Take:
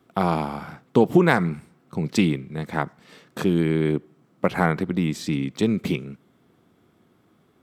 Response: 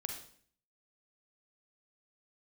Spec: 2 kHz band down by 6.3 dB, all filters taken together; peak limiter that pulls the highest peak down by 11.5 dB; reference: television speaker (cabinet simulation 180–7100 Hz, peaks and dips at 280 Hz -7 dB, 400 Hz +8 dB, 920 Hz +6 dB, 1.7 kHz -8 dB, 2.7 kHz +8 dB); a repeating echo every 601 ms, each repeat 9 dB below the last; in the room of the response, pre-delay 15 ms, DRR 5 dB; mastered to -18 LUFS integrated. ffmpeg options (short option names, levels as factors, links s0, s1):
-filter_complex "[0:a]equalizer=f=2000:t=o:g=-7.5,alimiter=limit=0.158:level=0:latency=1,aecho=1:1:601|1202|1803|2404:0.355|0.124|0.0435|0.0152,asplit=2[s0][s1];[1:a]atrim=start_sample=2205,adelay=15[s2];[s1][s2]afir=irnorm=-1:irlink=0,volume=0.596[s3];[s0][s3]amix=inputs=2:normalize=0,highpass=f=180:w=0.5412,highpass=f=180:w=1.3066,equalizer=f=280:t=q:w=4:g=-7,equalizer=f=400:t=q:w=4:g=8,equalizer=f=920:t=q:w=4:g=6,equalizer=f=1700:t=q:w=4:g=-8,equalizer=f=2700:t=q:w=4:g=8,lowpass=f=7100:w=0.5412,lowpass=f=7100:w=1.3066,volume=2.82"